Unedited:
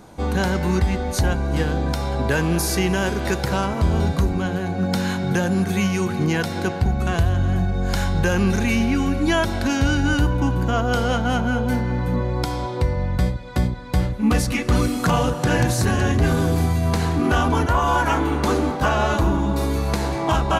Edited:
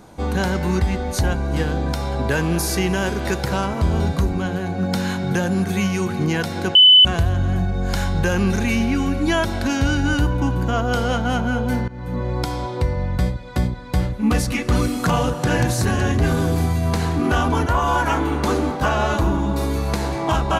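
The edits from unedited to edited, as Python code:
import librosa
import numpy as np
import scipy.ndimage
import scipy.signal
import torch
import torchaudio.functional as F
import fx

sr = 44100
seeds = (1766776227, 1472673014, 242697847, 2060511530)

y = fx.edit(x, sr, fx.bleep(start_s=6.75, length_s=0.3, hz=3010.0, db=-6.0),
    fx.fade_in_from(start_s=11.88, length_s=0.42, floor_db=-19.0), tone=tone)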